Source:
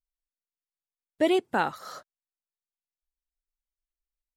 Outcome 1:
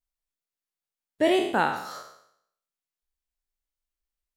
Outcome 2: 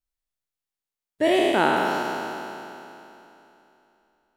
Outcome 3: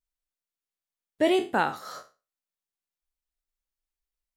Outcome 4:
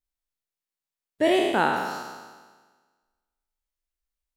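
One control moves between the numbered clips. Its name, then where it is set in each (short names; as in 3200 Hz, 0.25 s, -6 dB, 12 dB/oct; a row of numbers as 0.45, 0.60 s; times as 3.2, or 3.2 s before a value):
spectral trails, RT60: 0.69, 3.03, 0.3, 1.43 s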